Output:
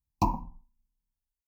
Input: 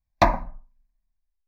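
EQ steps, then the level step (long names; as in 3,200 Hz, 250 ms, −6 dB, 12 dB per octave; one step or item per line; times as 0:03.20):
high-pass filter 79 Hz 6 dB per octave
elliptic band-stop filter 970–2,800 Hz, stop band 40 dB
phaser with its sweep stopped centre 1,500 Hz, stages 4
0.0 dB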